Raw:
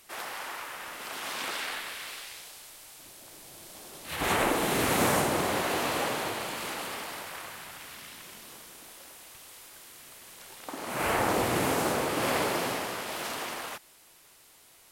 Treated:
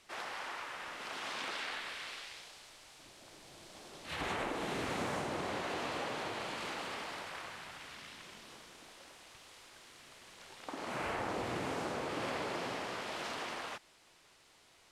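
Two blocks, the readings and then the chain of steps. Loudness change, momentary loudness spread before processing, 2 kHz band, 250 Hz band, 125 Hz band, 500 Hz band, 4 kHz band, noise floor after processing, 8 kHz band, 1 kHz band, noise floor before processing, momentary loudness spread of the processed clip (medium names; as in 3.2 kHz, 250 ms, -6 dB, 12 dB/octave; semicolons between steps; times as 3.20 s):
-9.5 dB, 21 LU, -8.0 dB, -9.5 dB, -10.0 dB, -9.5 dB, -8.0 dB, -64 dBFS, -14.5 dB, -9.0 dB, -57 dBFS, 17 LU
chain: low-pass 5.9 kHz 12 dB/octave; compression 3:1, threshold -33 dBFS, peak gain reduction 9 dB; trim -3.5 dB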